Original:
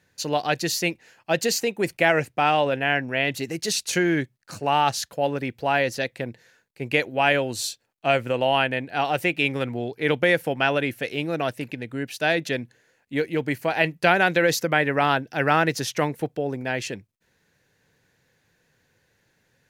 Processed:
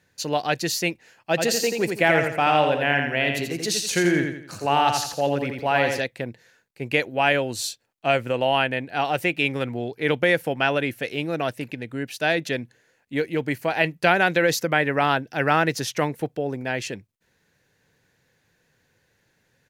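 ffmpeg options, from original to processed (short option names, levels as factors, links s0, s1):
-filter_complex "[0:a]asplit=3[s0][s1][s2];[s0]afade=t=out:st=1.36:d=0.02[s3];[s1]aecho=1:1:85|170|255|340|425:0.562|0.214|0.0812|0.0309|0.0117,afade=t=in:st=1.36:d=0.02,afade=t=out:st=5.99:d=0.02[s4];[s2]afade=t=in:st=5.99:d=0.02[s5];[s3][s4][s5]amix=inputs=3:normalize=0"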